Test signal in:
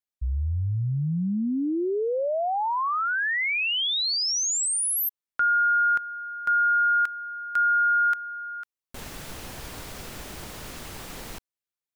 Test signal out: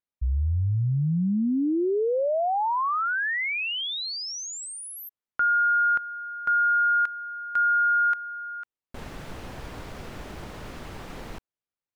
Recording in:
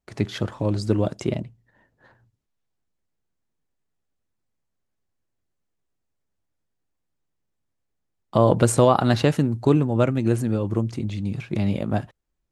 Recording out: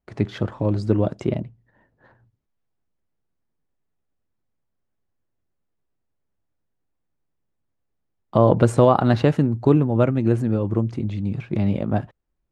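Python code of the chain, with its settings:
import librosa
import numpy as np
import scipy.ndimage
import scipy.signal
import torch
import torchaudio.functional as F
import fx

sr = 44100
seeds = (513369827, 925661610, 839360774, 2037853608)

y = fx.lowpass(x, sr, hz=1700.0, slope=6)
y = F.gain(torch.from_numpy(y), 2.0).numpy()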